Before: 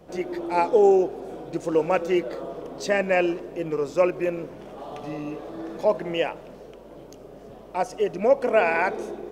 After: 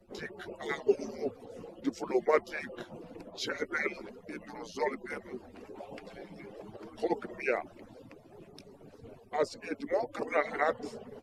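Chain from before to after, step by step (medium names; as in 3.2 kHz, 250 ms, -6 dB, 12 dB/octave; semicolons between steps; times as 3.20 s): harmonic-percussive separation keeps percussive; tape speed -17%; trim -2 dB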